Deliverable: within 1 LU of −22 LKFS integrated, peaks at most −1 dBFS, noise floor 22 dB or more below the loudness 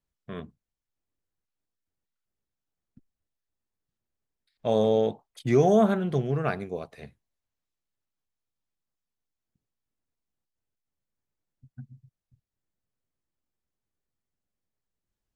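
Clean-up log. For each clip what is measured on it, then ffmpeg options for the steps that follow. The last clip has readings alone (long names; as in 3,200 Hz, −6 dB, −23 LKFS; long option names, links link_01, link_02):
integrated loudness −25.0 LKFS; sample peak −9.0 dBFS; target loudness −22.0 LKFS
→ -af "volume=3dB"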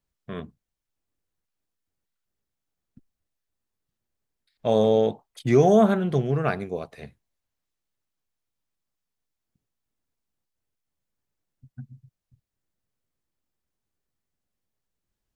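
integrated loudness −22.0 LKFS; sample peak −6.0 dBFS; background noise floor −84 dBFS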